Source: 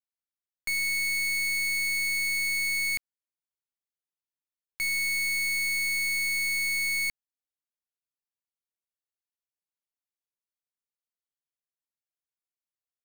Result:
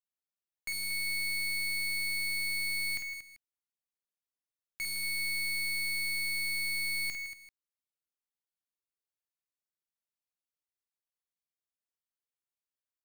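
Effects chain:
multi-tap delay 50/115/161/233/390 ms −5/−18.5/−10.5/−11/−19.5 dB
level −6.5 dB

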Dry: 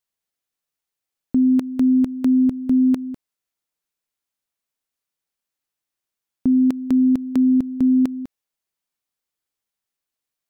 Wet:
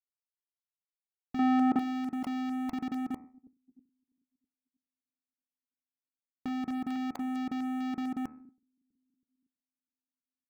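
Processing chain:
time-frequency cells dropped at random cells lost 26%
0:06.48–0:06.96: low-shelf EQ 200 Hz +6 dB
brickwall limiter −19 dBFS, peak gain reduction 9.5 dB
leveller curve on the samples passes 5
bucket-brigade delay 324 ms, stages 1,024, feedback 71%, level −21 dB
output level in coarse steps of 9 dB
0:01.39–0:01.79: mid-hump overdrive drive 25 dB, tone 1,100 Hz, clips at −3.5 dBFS
hum removal 75.86 Hz, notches 35
downward expander −42 dBFS
level −6 dB

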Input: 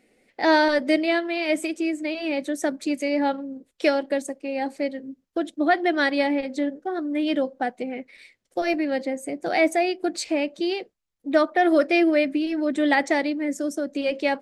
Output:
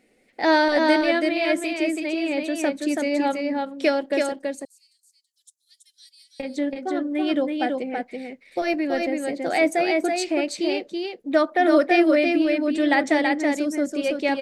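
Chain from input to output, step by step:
0:04.32–0:06.40: inverse Chebyshev high-pass filter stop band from 1,100 Hz, stop band 80 dB
single-tap delay 329 ms −3.5 dB

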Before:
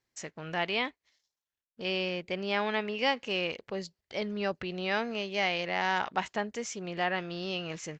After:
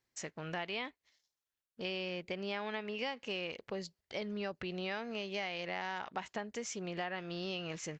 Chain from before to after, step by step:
downward compressor, threshold −34 dBFS, peak gain reduction 11 dB
level −1.5 dB

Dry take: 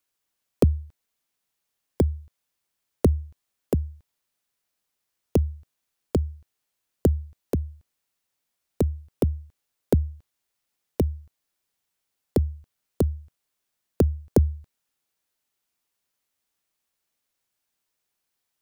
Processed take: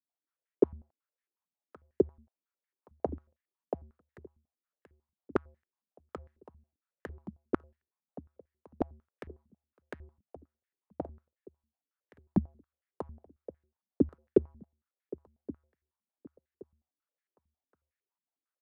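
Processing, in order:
leveller curve on the samples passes 1
repeating echo 1,123 ms, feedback 31%, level −16 dB
band-pass on a step sequencer 11 Hz 210–1,800 Hz

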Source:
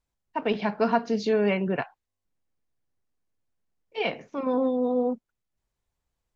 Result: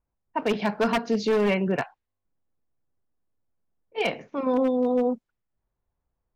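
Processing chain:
low-pass that shuts in the quiet parts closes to 1,300 Hz, open at −24.5 dBFS
wave folding −17.5 dBFS
level +2 dB

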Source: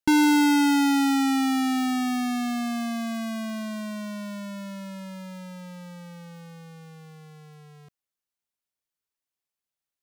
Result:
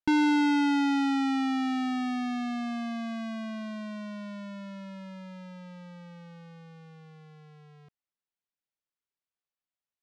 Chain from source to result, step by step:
low-pass filter 4,100 Hz 12 dB per octave
level −4.5 dB

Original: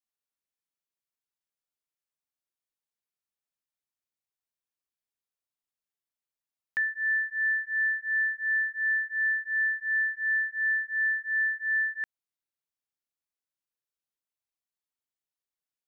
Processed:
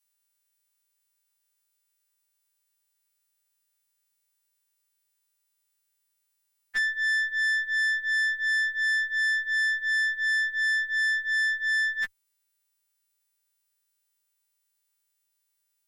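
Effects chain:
every partial snapped to a pitch grid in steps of 2 semitones
tube saturation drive 29 dB, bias 0.35
level +6.5 dB

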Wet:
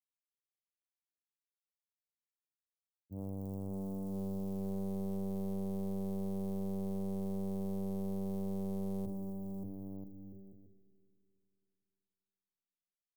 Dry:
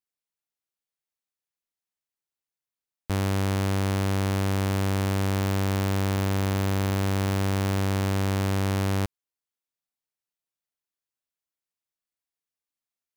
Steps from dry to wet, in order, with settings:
high-pass filter 97 Hz 24 dB per octave
downward expander −18 dBFS
inverse Chebyshev band-stop filter 1,200–9,100 Hz, stop band 60 dB
parametric band 130 Hz −5 dB 0.9 octaves
mains-hum notches 50/100/150/200/250/300/350/400/450 Hz
bouncing-ball delay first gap 580 ms, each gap 0.7×, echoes 5
four-comb reverb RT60 2.7 s, combs from 26 ms, DRR 8.5 dB
highs frequency-modulated by the lows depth 0.75 ms
level +2 dB

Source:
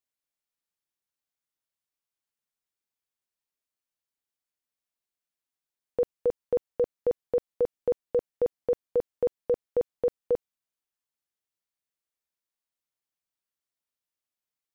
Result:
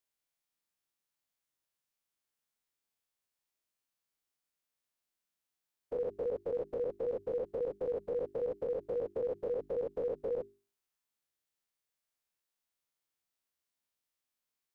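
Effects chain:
every bin's largest magnitude spread in time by 120 ms
brickwall limiter −25.5 dBFS, peak gain reduction 11 dB
mains-hum notches 50/100/150/200/250/300/350/400 Hz
level −3 dB

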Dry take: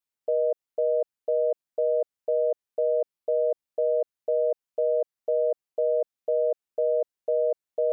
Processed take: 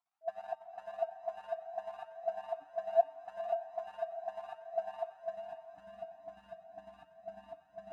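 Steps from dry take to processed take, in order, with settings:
mu-law and A-law mismatch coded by mu
on a send at −5 dB: convolution reverb RT60 1.4 s, pre-delay 80 ms
on the sum: sound drawn into the spectrogram rise, 0:02.62–0:03.01, 320–700 Hz −32 dBFS
band-pass filter sweep 710 Hz → 340 Hz, 0:05.10–0:05.74
brick-wall band-stop 300–650 Hz
transient designer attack +1 dB, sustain −11 dB
feedback delay with all-pass diffusion 498 ms, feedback 52%, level −8.5 dB
flanger whose copies keep moving one way rising 1.6 Hz
level +15 dB

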